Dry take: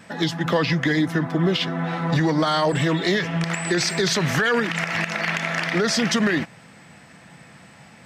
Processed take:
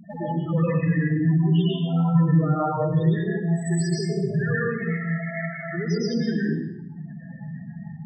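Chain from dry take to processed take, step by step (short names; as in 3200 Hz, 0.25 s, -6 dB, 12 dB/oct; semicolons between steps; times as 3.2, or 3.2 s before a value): dynamic EQ 300 Hz, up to -6 dB, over -38 dBFS, Q 3.1; compressor 6:1, threshold -33 dBFS, peak gain reduction 15 dB; loudest bins only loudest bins 4; 3.98–4.46 brick-wall FIR low-pass 2000 Hz; reverb RT60 0.85 s, pre-delay 0.102 s, DRR -6.5 dB; gain +6.5 dB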